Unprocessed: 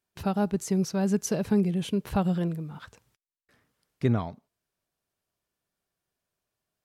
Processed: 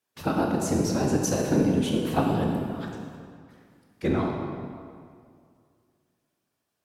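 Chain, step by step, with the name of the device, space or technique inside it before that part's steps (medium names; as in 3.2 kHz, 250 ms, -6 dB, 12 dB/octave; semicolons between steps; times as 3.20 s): whispering ghost (whisper effect; high-pass 220 Hz 6 dB/octave; reverberation RT60 2.2 s, pre-delay 12 ms, DRR 0 dB); trim +2 dB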